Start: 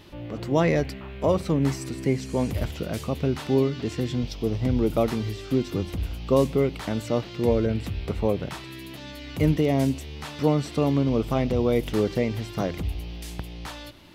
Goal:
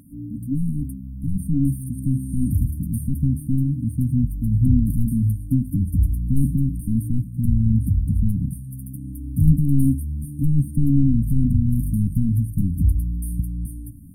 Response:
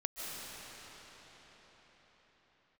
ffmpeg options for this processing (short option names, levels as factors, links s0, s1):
-filter_complex "[0:a]asplit=2[s0][s1];[s1]highpass=f=720:p=1,volume=14.1,asoftclip=type=tanh:threshold=0.398[s2];[s0][s2]amix=inputs=2:normalize=0,lowpass=f=4300:p=1,volume=0.501,asubboost=boost=5.5:cutoff=140,afftfilt=real='re*(1-between(b*sr/4096,300,8600))':imag='im*(1-between(b*sr/4096,300,8600))':win_size=4096:overlap=0.75"